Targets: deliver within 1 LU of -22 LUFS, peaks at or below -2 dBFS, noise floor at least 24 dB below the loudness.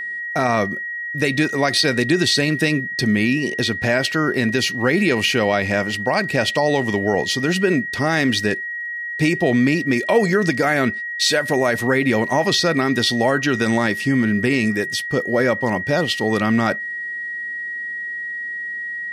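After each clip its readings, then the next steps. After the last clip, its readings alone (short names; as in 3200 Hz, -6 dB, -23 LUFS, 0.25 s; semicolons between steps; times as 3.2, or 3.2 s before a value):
ticks 24/s; steady tone 1900 Hz; tone level -25 dBFS; loudness -19.0 LUFS; peak -5.0 dBFS; loudness target -22.0 LUFS
-> de-click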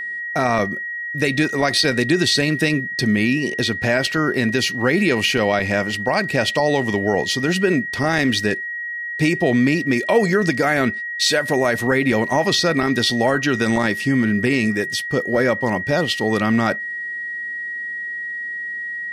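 ticks 0/s; steady tone 1900 Hz; tone level -25 dBFS
-> notch 1900 Hz, Q 30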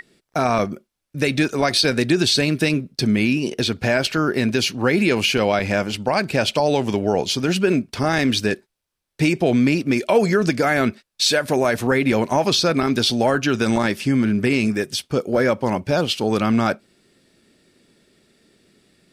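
steady tone none; loudness -19.5 LUFS; peak -5.5 dBFS; loudness target -22.0 LUFS
-> gain -2.5 dB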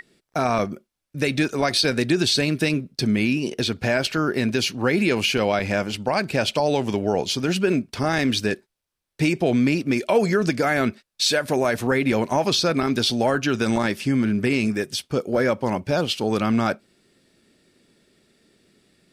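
loudness -22.0 LUFS; peak -8.0 dBFS; noise floor -80 dBFS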